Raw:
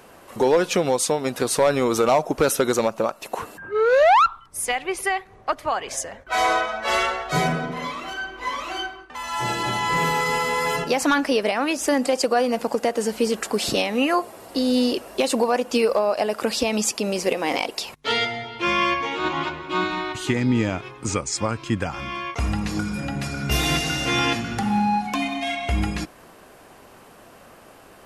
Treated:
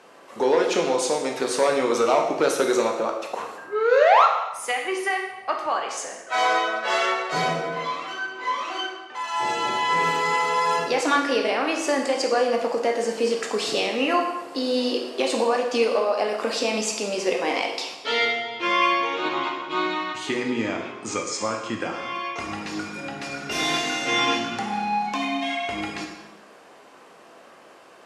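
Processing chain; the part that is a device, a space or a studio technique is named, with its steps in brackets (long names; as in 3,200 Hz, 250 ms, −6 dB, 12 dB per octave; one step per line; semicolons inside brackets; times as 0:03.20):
supermarket ceiling speaker (band-pass filter 270–7,000 Hz; convolution reverb RT60 0.95 s, pre-delay 12 ms, DRR 1 dB)
level −2.5 dB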